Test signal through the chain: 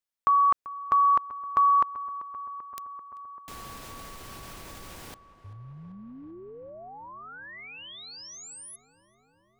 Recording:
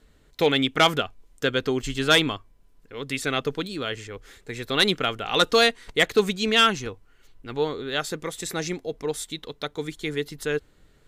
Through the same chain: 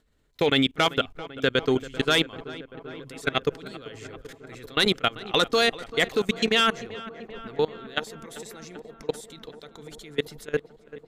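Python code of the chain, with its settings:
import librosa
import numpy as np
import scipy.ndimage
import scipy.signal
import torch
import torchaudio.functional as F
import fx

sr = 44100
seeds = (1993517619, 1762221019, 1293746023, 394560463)

y = fx.level_steps(x, sr, step_db=24)
y = fx.echo_filtered(y, sr, ms=389, feedback_pct=81, hz=2500.0, wet_db=-16.5)
y = y * librosa.db_to_amplitude(4.0)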